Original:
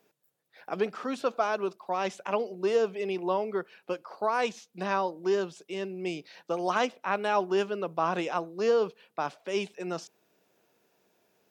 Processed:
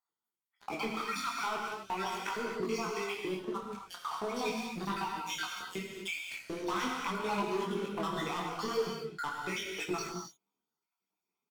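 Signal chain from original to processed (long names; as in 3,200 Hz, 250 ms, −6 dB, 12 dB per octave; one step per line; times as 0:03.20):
time-frequency cells dropped at random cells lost 55%
high-pass filter 200 Hz 6 dB per octave
comb filter 0.9 ms, depth 87%
in parallel at −2 dB: output level in coarse steps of 23 dB
on the sum: leveller curve on the samples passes 5
downward compressor 5 to 1, threshold −25 dBFS, peak gain reduction 11 dB
reverb whose tail is shaped and stops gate 290 ms flat, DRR 0 dB
micro pitch shift up and down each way 14 cents
level −7 dB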